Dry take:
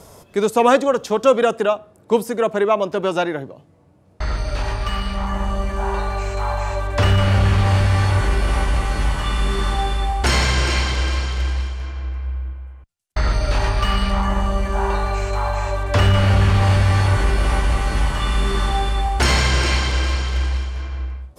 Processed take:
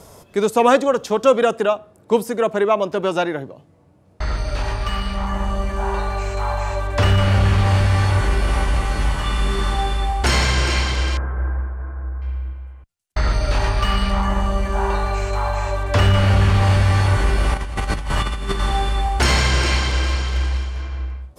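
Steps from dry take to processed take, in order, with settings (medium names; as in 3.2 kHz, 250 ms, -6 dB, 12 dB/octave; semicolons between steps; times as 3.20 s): 11.17–12.22 s: elliptic low-pass 1.6 kHz, stop band 80 dB; 17.54–18.60 s: compressor with a negative ratio -21 dBFS, ratio -0.5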